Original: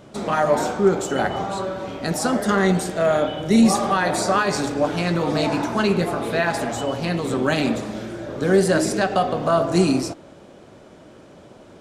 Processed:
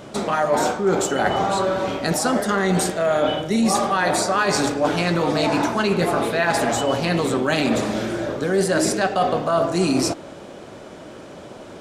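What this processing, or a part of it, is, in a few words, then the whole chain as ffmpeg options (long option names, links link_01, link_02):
compression on the reversed sound: -af "lowshelf=frequency=270:gain=-5,areverse,acompressor=threshold=-25dB:ratio=6,areverse,volume=8.5dB"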